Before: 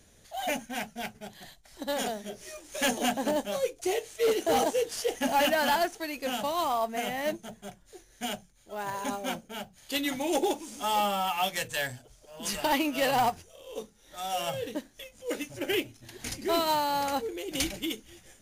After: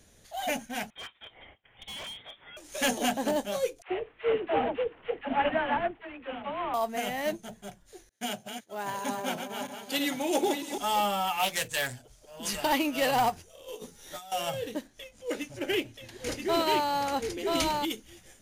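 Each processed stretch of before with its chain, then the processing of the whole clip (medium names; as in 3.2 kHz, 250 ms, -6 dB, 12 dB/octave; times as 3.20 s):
0.90–2.57 s: high-pass 770 Hz + frequency inversion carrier 3.9 kHz + hard clipper -38 dBFS
3.82–6.74 s: CVSD coder 16 kbps + phase dispersion lows, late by 74 ms, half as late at 490 Hz + upward expansion, over -36 dBFS
8.09–10.78 s: backward echo that repeats 317 ms, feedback 44%, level -6 dB + high-pass 110 Hz 24 dB/octave + expander -49 dBFS
11.39–11.94 s: expander -42 dBFS + treble shelf 4.3 kHz +5.5 dB + loudspeaker Doppler distortion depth 0.22 ms
13.68–14.32 s: treble shelf 5.5 kHz +4.5 dB + compressor with a negative ratio -45 dBFS + doubling 12 ms -3 dB
14.87–17.85 s: treble shelf 9.5 kHz -8.5 dB + delay 980 ms -3 dB
whole clip: none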